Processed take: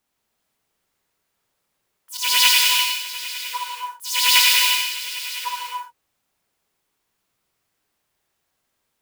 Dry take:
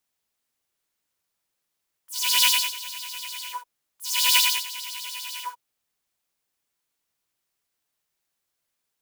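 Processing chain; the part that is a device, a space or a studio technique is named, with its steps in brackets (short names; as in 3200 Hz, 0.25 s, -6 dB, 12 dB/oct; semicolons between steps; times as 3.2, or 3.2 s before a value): 2.17–2.9 expander -26 dBFS; behind a face mask (high shelf 2300 Hz -8 dB); non-linear reverb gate 0.38 s flat, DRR -1.5 dB; gain +8 dB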